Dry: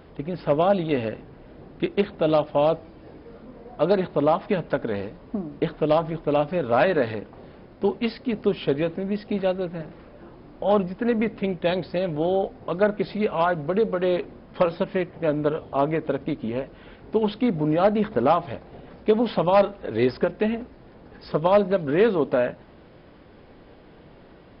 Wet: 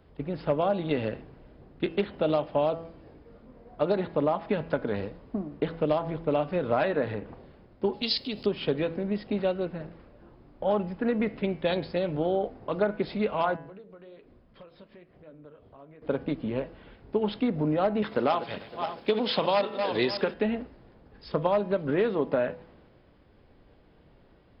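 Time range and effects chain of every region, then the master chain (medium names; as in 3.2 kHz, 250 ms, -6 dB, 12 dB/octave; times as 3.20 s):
6.88–7.34 s: distance through air 170 m + upward compressor, threshold -29 dBFS
7.93–8.46 s: compression 5:1, threshold -26 dBFS + resonant high shelf 2.7 kHz +11.5 dB, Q 1.5
13.56–16.02 s: band-stop 850 Hz, Q 9.4 + compression 5:1, threshold -36 dBFS + flange 1.2 Hz, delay 1.8 ms, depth 9.3 ms, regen -65%
18.02–20.34 s: backward echo that repeats 280 ms, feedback 46%, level -10 dB + high-pass 180 Hz 6 dB/octave + treble shelf 2.5 kHz +12 dB
whole clip: de-hum 165.3 Hz, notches 19; compression 6:1, threshold -21 dBFS; three bands expanded up and down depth 40%; trim -1 dB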